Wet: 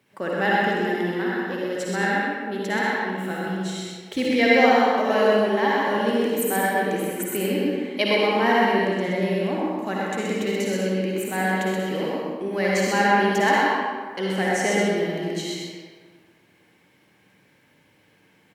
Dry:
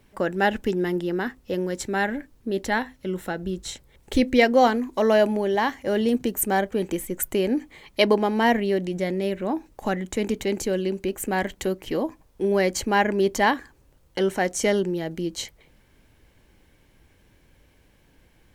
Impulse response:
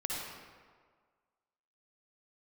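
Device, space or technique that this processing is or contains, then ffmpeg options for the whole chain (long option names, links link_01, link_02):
PA in a hall: -filter_complex "[0:a]highpass=frequency=120:width=0.5412,highpass=frequency=120:width=1.3066,equalizer=frequency=2200:width_type=o:width=1.5:gain=4.5,aecho=1:1:127:0.631[link_01];[1:a]atrim=start_sample=2205[link_02];[link_01][link_02]afir=irnorm=-1:irlink=0,volume=-4.5dB"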